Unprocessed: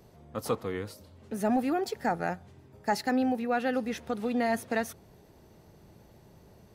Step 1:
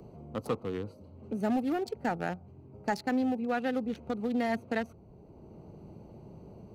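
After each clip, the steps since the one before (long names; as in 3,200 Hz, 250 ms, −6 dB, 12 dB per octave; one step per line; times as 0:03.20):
adaptive Wiener filter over 25 samples
parametric band 710 Hz −3 dB 1.8 octaves
multiband upward and downward compressor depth 40%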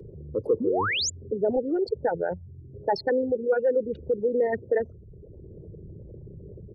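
spectral envelope exaggerated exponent 3
comb filter 2.1 ms, depth 61%
sound drawn into the spectrogram rise, 0:00.60–0:01.10, 210–7,500 Hz −32 dBFS
level +5.5 dB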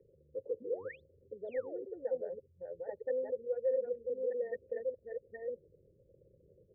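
delay that plays each chunk backwards 618 ms, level −2.5 dB
formant resonators in series e
high-frequency loss of the air 450 metres
level −7 dB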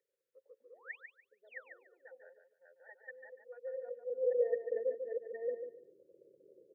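high-pass filter sweep 1,600 Hz → 350 Hz, 0:03.20–0:04.76
repeating echo 145 ms, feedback 21%, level −7.5 dB
level −2.5 dB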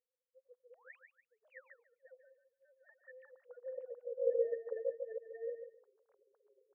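three sine waves on the formant tracks
level −2.5 dB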